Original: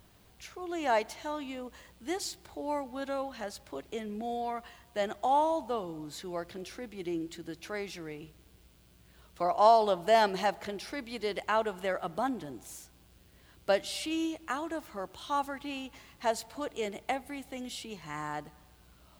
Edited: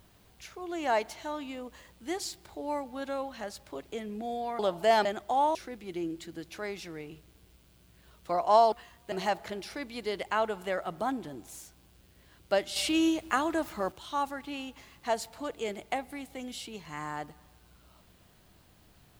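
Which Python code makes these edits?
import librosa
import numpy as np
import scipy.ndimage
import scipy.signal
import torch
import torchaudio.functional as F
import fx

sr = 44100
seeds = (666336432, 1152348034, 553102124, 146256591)

y = fx.edit(x, sr, fx.swap(start_s=4.59, length_s=0.4, other_s=9.83, other_length_s=0.46),
    fx.cut(start_s=5.49, length_s=1.17),
    fx.clip_gain(start_s=13.93, length_s=1.16, db=6.5), tone=tone)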